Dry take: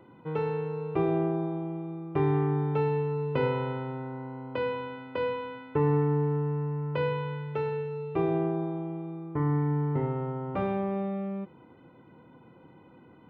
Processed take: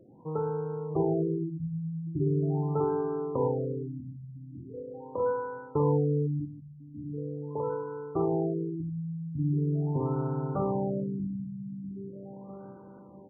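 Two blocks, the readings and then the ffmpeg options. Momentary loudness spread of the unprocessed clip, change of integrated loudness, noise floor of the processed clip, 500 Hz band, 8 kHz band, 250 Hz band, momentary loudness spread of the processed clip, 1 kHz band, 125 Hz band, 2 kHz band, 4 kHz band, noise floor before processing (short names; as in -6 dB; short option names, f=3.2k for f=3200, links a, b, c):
10 LU, -1.0 dB, -49 dBFS, -1.0 dB, n/a, -0.5 dB, 16 LU, -3.0 dB, -1.0 dB, -12.0 dB, under -35 dB, -55 dBFS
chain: -af "aecho=1:1:645|1290|1935|2580|3225:0.531|0.223|0.0936|0.0393|0.0165,afftfilt=real='re*lt(b*sr/1024,250*pow(1700/250,0.5+0.5*sin(2*PI*0.41*pts/sr)))':imag='im*lt(b*sr/1024,250*pow(1700/250,0.5+0.5*sin(2*PI*0.41*pts/sr)))':win_size=1024:overlap=0.75,volume=-1dB"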